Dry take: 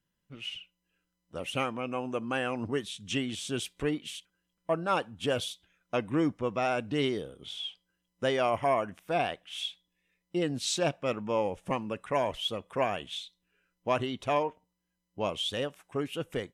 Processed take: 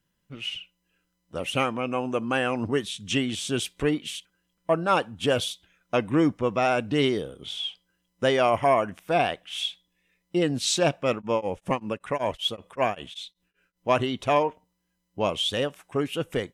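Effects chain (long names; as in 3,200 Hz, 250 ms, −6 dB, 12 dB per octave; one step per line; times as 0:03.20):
0:11.13–0:13.89: tremolo along a rectified sine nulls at 5.2 Hz
level +6 dB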